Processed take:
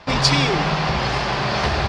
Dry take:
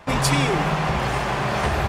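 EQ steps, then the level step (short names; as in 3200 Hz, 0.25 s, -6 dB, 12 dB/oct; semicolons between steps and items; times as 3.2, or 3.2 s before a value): synth low-pass 4800 Hz, resonance Q 3.1; +1.0 dB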